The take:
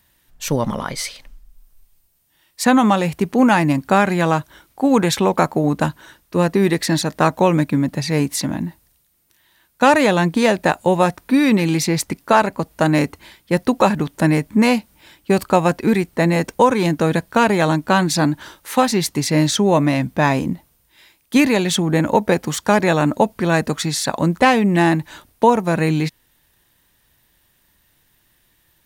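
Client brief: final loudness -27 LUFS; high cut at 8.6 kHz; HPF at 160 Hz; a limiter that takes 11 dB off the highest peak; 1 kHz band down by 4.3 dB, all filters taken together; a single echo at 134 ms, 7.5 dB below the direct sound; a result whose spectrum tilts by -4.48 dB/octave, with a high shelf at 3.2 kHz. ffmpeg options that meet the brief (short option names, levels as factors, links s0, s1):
-af "highpass=160,lowpass=8600,equalizer=f=1000:t=o:g=-6,highshelf=f=3200:g=5,alimiter=limit=0.224:level=0:latency=1,aecho=1:1:134:0.422,volume=0.631"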